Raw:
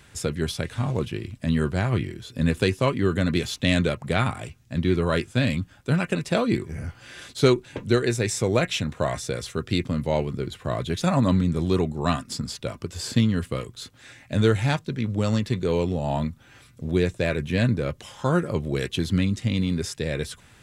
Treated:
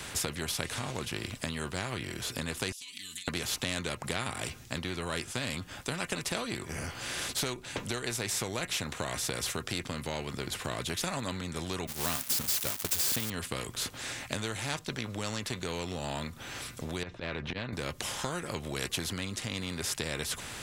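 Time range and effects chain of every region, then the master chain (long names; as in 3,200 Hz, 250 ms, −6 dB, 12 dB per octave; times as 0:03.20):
0:02.72–0:03.28: inverse Chebyshev high-pass filter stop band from 1,500 Hz + downward compressor 12 to 1, threshold −51 dBFS + comb filter 4 ms, depth 92%
0:11.87–0:13.30: spike at every zero crossing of −19 dBFS + downward expander −23 dBFS
0:17.03–0:17.73: volume swells 122 ms + high-frequency loss of the air 280 metres + downward compressor, threshold −29 dBFS
whole clip: downward compressor 4 to 1, threshold −31 dBFS; every bin compressed towards the loudest bin 2 to 1; level +4 dB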